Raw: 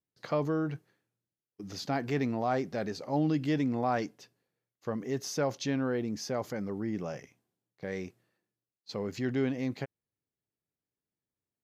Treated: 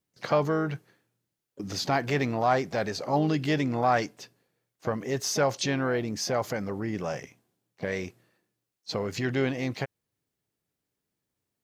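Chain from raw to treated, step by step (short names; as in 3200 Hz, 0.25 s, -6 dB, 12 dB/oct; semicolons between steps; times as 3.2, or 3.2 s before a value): harmoniser +5 st -16 dB; dynamic EQ 250 Hz, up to -8 dB, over -43 dBFS, Q 0.72; gain +8.5 dB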